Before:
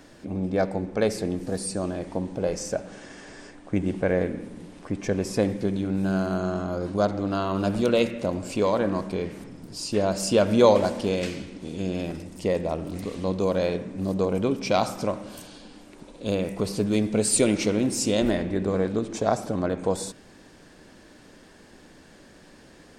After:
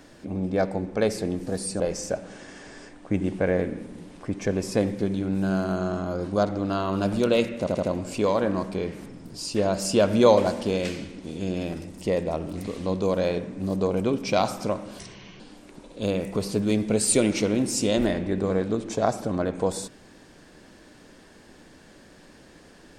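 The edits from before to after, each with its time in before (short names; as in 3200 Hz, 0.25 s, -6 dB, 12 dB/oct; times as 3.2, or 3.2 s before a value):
1.8–2.42 cut
8.21 stutter 0.08 s, 4 plays
15.37–15.64 speed 66%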